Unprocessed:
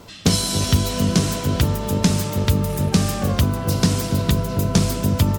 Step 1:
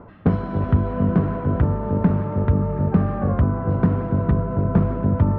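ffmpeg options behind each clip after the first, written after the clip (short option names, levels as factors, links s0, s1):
-af "lowpass=f=1500:w=0.5412,lowpass=f=1500:w=1.3066,areverse,acompressor=mode=upward:threshold=0.0631:ratio=2.5,areverse"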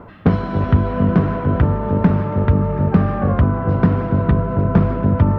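-af "highshelf=f=2000:g=9.5,volume=1.5"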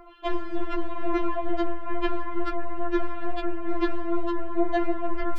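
-af "aeval=exprs='0.891*(cos(1*acos(clip(val(0)/0.891,-1,1)))-cos(1*PI/2))+0.251*(cos(6*acos(clip(val(0)/0.891,-1,1)))-cos(6*PI/2))+0.224*(cos(8*acos(clip(val(0)/0.891,-1,1)))-cos(8*PI/2))':c=same,flanger=delay=0.6:depth=6.3:regen=69:speed=0.57:shape=sinusoidal,afftfilt=real='re*4*eq(mod(b,16),0)':imag='im*4*eq(mod(b,16),0)':win_size=2048:overlap=0.75"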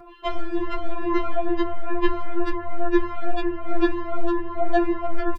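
-filter_complex "[0:a]asplit=2[s0][s1];[s1]adelay=3.7,afreqshift=2.1[s2];[s0][s2]amix=inputs=2:normalize=1,volume=2"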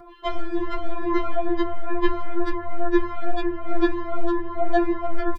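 -af "asuperstop=centerf=2600:order=20:qfactor=7.5"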